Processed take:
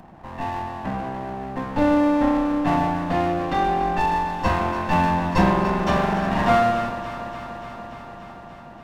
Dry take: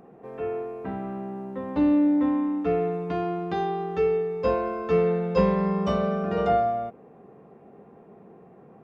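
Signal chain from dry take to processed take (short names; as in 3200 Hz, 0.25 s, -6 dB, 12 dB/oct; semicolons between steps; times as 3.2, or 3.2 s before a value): minimum comb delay 1.1 ms; on a send: echo with dull and thin repeats by turns 0.145 s, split 1000 Hz, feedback 87%, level -10 dB; on the sum: gain +6.5 dB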